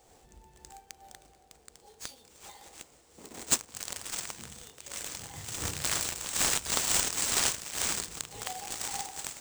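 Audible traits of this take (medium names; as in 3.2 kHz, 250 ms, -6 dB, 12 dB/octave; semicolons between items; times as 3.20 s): aliases and images of a low sample rate 15 kHz, jitter 20%; random flutter of the level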